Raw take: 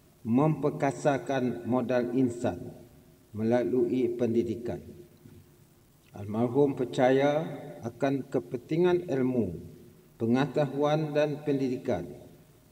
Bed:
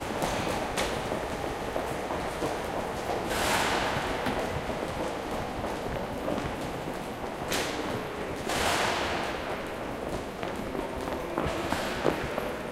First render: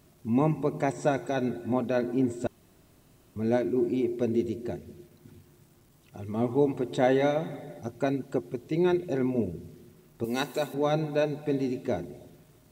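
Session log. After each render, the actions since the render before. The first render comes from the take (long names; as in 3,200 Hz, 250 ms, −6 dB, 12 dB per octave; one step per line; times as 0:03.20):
0:02.47–0:03.36: fill with room tone
0:10.24–0:10.74: RIAA equalisation recording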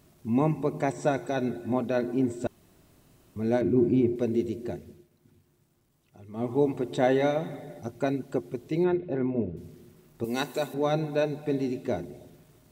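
0:03.61–0:04.16: bass and treble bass +12 dB, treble −8 dB
0:04.71–0:06.65: duck −9.5 dB, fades 0.34 s equal-power
0:08.84–0:09.57: high-frequency loss of the air 400 metres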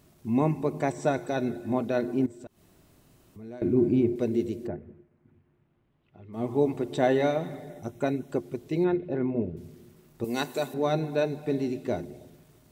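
0:02.26–0:03.62: downward compressor 2 to 1, threshold −51 dBFS
0:04.66–0:06.32: low-pass filter 1,800 Hz → 3,600 Hz 24 dB per octave
0:07.70–0:08.30: Butterworth band-reject 4,600 Hz, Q 4.9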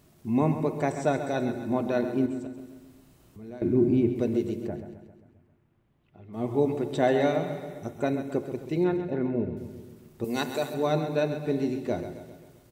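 repeating echo 133 ms, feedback 55%, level −10.5 dB
spring reverb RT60 1 s, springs 33/57 ms, chirp 65 ms, DRR 13.5 dB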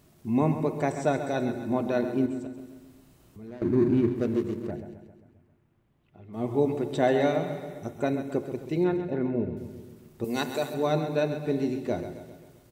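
0:03.47–0:04.71: running median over 41 samples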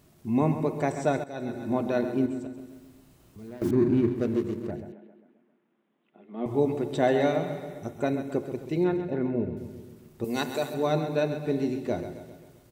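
0:01.24–0:01.69: fade in, from −15 dB
0:02.71–0:03.71: one scale factor per block 5 bits
0:04.92–0:06.46: Chebyshev band-pass filter 200–3,600 Hz, order 4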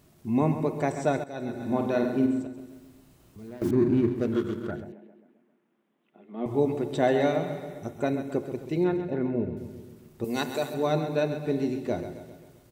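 0:01.55–0:02.42: flutter between parallel walls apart 8.5 metres, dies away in 0.46 s
0:04.32–0:04.84: hollow resonant body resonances 1,400/3,300 Hz, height 17 dB, ringing for 20 ms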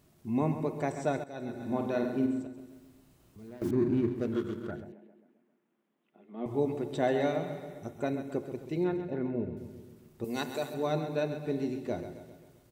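level −5 dB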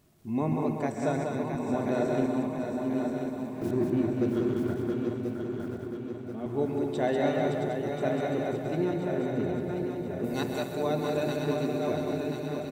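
feedback delay that plays each chunk backwards 517 ms, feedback 70%, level −4.5 dB
multi-tap delay 193/669 ms −4.5/−7 dB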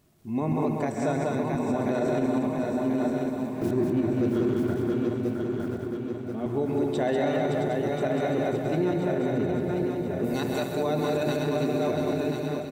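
automatic gain control gain up to 4.5 dB
brickwall limiter −17 dBFS, peak gain reduction 7.5 dB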